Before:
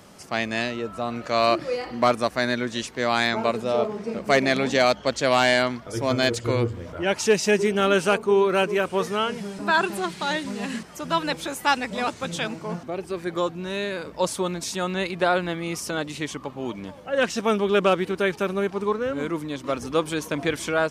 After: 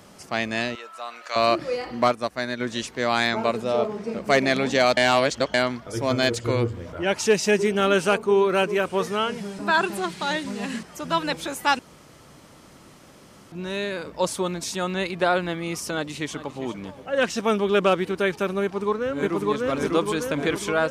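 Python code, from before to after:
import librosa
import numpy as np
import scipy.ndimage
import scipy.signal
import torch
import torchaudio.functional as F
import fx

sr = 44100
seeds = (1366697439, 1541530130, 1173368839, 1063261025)

y = fx.highpass(x, sr, hz=990.0, slope=12, at=(0.75, 1.36))
y = fx.upward_expand(y, sr, threshold_db=-33.0, expansion=1.5, at=(2.07, 2.59), fade=0.02)
y = fx.echo_throw(y, sr, start_s=15.93, length_s=0.69, ms=400, feedback_pct=10, wet_db=-14.0)
y = fx.echo_throw(y, sr, start_s=18.62, length_s=0.74, ms=600, feedback_pct=60, wet_db=0.0)
y = fx.edit(y, sr, fx.reverse_span(start_s=4.97, length_s=0.57),
    fx.room_tone_fill(start_s=11.79, length_s=1.73), tone=tone)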